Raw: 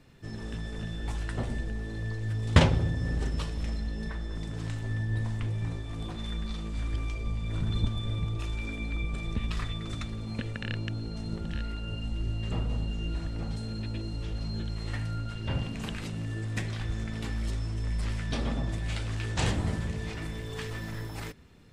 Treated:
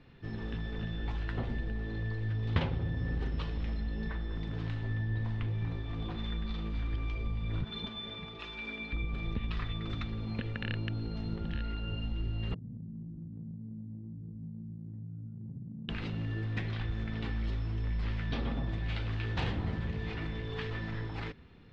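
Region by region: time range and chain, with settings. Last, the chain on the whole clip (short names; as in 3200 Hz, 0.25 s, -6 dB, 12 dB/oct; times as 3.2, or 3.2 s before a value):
7.64–8.93 HPF 570 Hz 6 dB/oct + comb 4.8 ms, depth 57%
12.54–15.89 Butterworth band-pass 170 Hz, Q 1.5 + compressor, threshold -39 dBFS
whole clip: LPF 4000 Hz 24 dB/oct; notch 610 Hz, Q 12; compressor 2.5:1, threshold -31 dBFS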